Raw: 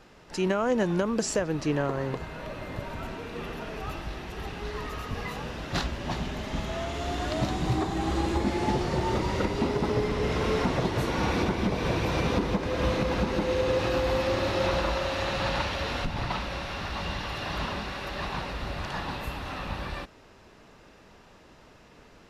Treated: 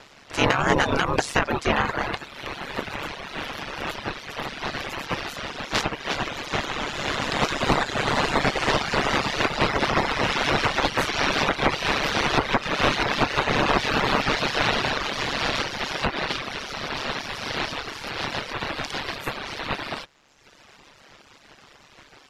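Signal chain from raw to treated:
ceiling on every frequency bin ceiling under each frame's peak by 24 dB
in parallel at −5.5 dB: gain into a clipping stage and back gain 20 dB
on the sum: low-pass filter 2,600 Hz 6 dB per octave
harmonic generator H 2 −13 dB, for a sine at −10.5 dBFS
ring modulation 71 Hz
reverb reduction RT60 1.2 s
level +7.5 dB

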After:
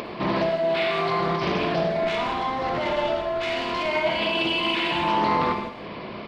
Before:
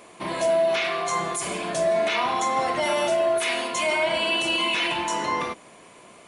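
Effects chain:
downsampling to 11,025 Hz
brickwall limiter −22 dBFS, peak gain reduction 9 dB
in parallel at −7 dB: hard clipping −24.5 dBFS, distortion −23 dB
on the sum: far-end echo of a speakerphone 160 ms, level −13 dB
0:02.04–0:03.89: tube saturation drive 20 dB, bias 0.5
low-shelf EQ 390 Hz +8 dB
on a send at −3 dB: convolution reverb, pre-delay 50 ms
on the sum: upward compression, threshold −27 dBFS
highs frequency-modulated by the lows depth 0.32 ms

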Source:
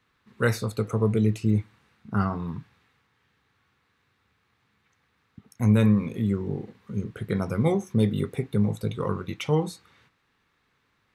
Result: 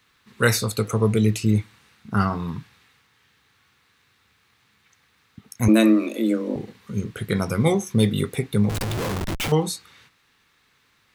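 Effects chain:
0:05.68–0:06.56: frequency shifter +110 Hz
high-shelf EQ 2,300 Hz +11.5 dB
0:08.69–0:09.52: comparator with hysteresis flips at −35.5 dBFS
level +3 dB

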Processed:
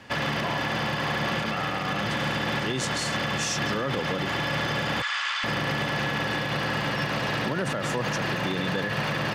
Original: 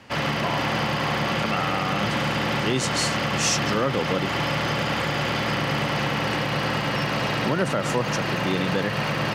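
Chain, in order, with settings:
0:05.02–0:05.44: elliptic band-pass filter 1,100–8,200 Hz, stop band 80 dB
hollow resonant body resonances 1,700/3,500 Hz, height 13 dB, ringing for 85 ms
brickwall limiter −18.5 dBFS, peak gain reduction 8 dB

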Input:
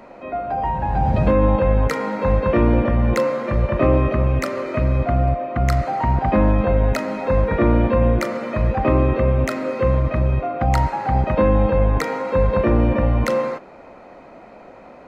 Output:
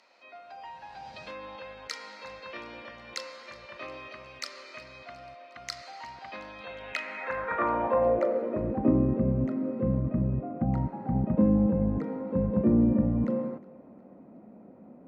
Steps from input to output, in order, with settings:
band-pass filter sweep 4,700 Hz → 210 Hz, 0:06.53–0:09.00
feedback echo with a high-pass in the loop 362 ms, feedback 52%, level −21.5 dB
level +1.5 dB

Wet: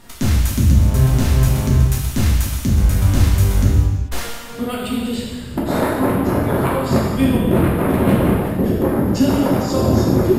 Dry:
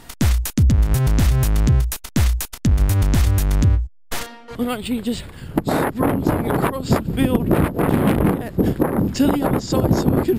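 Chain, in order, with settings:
reverb whose tail is shaped and stops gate 470 ms falling, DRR −5 dB
level −4.5 dB

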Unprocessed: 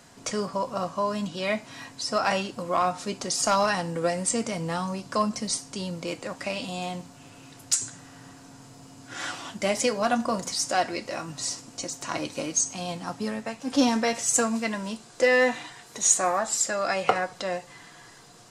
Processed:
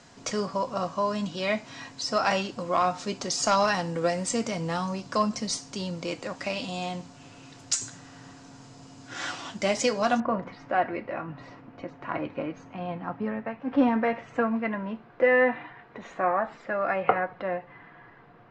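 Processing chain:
low-pass filter 7,100 Hz 24 dB per octave, from 0:10.20 2,200 Hz

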